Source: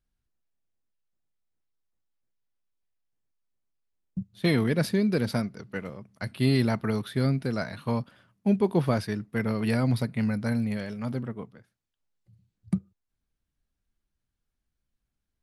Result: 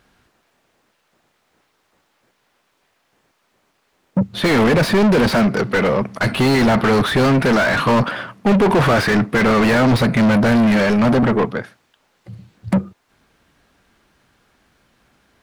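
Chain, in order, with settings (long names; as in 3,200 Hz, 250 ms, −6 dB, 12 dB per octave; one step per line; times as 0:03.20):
0:07.22–0:09.81: dynamic equaliser 1,600 Hz, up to +5 dB, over −43 dBFS, Q 0.71
mid-hump overdrive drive 42 dB, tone 1,300 Hz, clips at −8.5 dBFS
level +2.5 dB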